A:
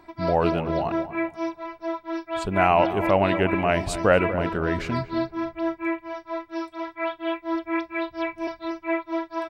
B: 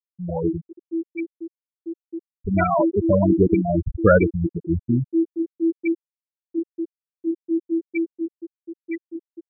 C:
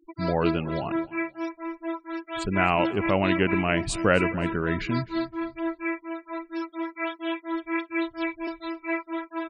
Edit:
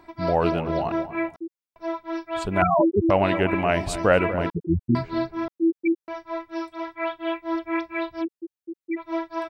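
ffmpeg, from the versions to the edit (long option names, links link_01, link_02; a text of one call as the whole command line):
ffmpeg -i take0.wav -i take1.wav -filter_complex "[1:a]asplit=5[link_01][link_02][link_03][link_04][link_05];[0:a]asplit=6[link_06][link_07][link_08][link_09][link_10][link_11];[link_06]atrim=end=1.362[link_12];[link_01]atrim=start=1.358:end=1.762[link_13];[link_07]atrim=start=1.758:end=2.622[link_14];[link_02]atrim=start=2.618:end=3.102[link_15];[link_08]atrim=start=3.098:end=4.502[link_16];[link_03]atrim=start=4.498:end=4.952[link_17];[link_09]atrim=start=4.948:end=5.482[link_18];[link_04]atrim=start=5.478:end=6.082[link_19];[link_10]atrim=start=6.078:end=8.25[link_20];[link_05]atrim=start=8.19:end=9.02[link_21];[link_11]atrim=start=8.96[link_22];[link_12][link_13]acrossfade=duration=0.004:curve1=hsin:curve2=hsin[link_23];[link_23][link_14]acrossfade=duration=0.004:curve1=hsin:curve2=hsin[link_24];[link_24][link_15]acrossfade=duration=0.004:curve1=hsin:curve2=hsin[link_25];[link_25][link_16]acrossfade=duration=0.004:curve1=hsin:curve2=hsin[link_26];[link_26][link_17]acrossfade=duration=0.004:curve1=hsin:curve2=hsin[link_27];[link_27][link_18]acrossfade=duration=0.004:curve1=hsin:curve2=hsin[link_28];[link_28][link_19]acrossfade=duration=0.004:curve1=hsin:curve2=hsin[link_29];[link_29][link_20]acrossfade=duration=0.004:curve1=hsin:curve2=hsin[link_30];[link_30][link_21]acrossfade=duration=0.06:curve1=tri:curve2=tri[link_31];[link_31][link_22]acrossfade=duration=0.06:curve1=tri:curve2=tri" out.wav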